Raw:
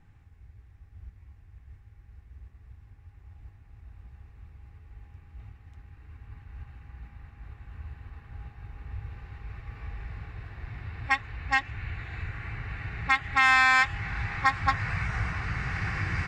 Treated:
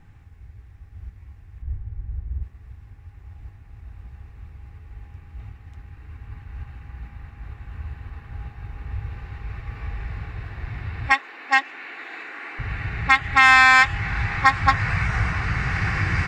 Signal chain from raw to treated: 1.62–2.43 s: tilt EQ -3 dB/octave; 11.12–12.59 s: elliptic high-pass 280 Hz, stop band 80 dB; trim +7.5 dB

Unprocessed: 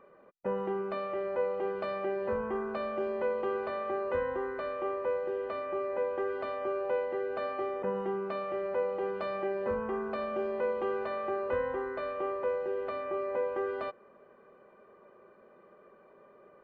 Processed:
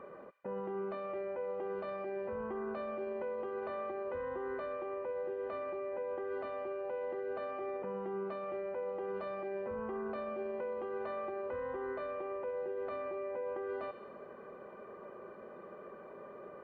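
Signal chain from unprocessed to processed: high-pass 41 Hz; treble shelf 3.2 kHz -10 dB; reverse; compression 10:1, threshold -41 dBFS, peak gain reduction 14.5 dB; reverse; peak limiter -40.5 dBFS, peak gain reduction 8.5 dB; feedback echo behind a high-pass 67 ms, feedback 67%, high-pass 2.5 kHz, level -7.5 dB; trim +8.5 dB

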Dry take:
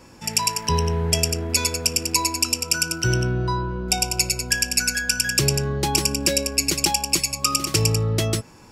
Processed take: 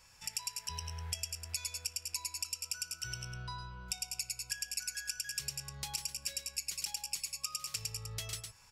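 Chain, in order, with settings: amplifier tone stack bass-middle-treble 10-0-10; delay 107 ms -7.5 dB; compression 2.5:1, threshold -33 dBFS, peak gain reduction 12 dB; trim -6.5 dB

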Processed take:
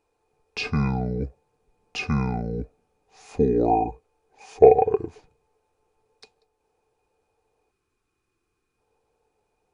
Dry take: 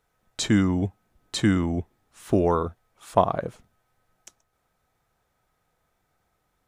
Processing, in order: small resonant body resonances 640/1100/3600 Hz, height 17 dB, ringing for 45 ms; time-frequency box 5.29–6.02 s, 600–1500 Hz -13 dB; wide varispeed 0.686×; trim -4.5 dB

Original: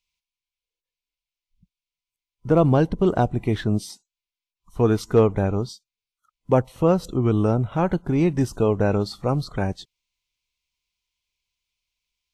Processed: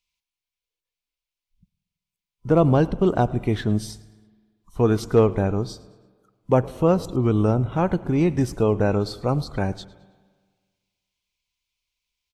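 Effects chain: on a send: frequency-shifting echo 108 ms, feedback 41%, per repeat -83 Hz, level -21.5 dB; on the sum: spring tank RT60 1.6 s, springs 47/56 ms, chirp 75 ms, DRR 19 dB

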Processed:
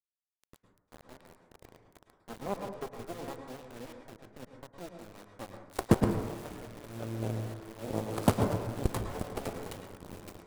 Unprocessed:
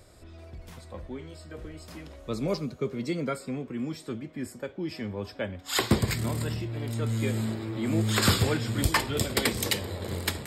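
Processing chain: median filter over 25 samples; peaking EQ 10 kHz +10.5 dB 1 oct; in parallel at -2 dB: compression 20:1, threshold -37 dBFS, peak gain reduction 21 dB; on the sum: Chebyshev shaper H 2 -36 dB, 3 -8 dB, 5 -25 dB, 6 -26 dB, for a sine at -12 dBFS; dynamic bell 630 Hz, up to +5 dB, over -47 dBFS, Q 0.92; bit crusher 8-bit; on a send at -5 dB: reverberation RT60 0.80 s, pre-delay 98 ms

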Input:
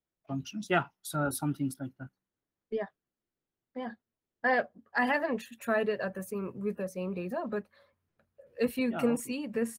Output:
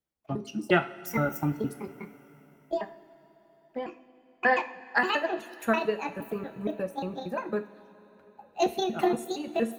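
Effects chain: pitch shift switched off and on +7 st, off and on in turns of 117 ms; transient shaper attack +6 dB, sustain -5 dB; two-slope reverb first 0.4 s, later 4.2 s, from -18 dB, DRR 7.5 dB

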